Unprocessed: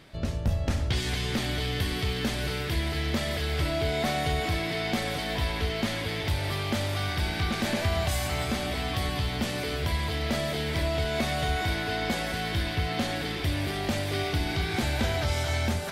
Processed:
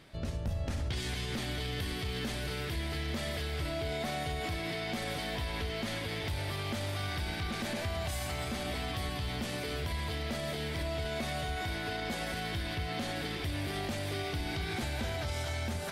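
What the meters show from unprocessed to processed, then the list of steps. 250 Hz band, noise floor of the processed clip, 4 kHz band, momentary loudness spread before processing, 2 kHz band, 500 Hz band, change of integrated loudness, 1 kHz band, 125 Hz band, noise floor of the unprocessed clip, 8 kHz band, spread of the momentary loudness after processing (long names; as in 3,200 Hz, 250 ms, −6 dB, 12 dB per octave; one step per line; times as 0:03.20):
−7.0 dB, −37 dBFS, −6.5 dB, 2 LU, −6.5 dB, −6.5 dB, −7.0 dB, −6.5 dB, −7.0 dB, −32 dBFS, −6.0 dB, 1 LU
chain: parametric band 9,500 Hz +2.5 dB 0.33 octaves
brickwall limiter −23 dBFS, peak gain reduction 5.5 dB
level −4 dB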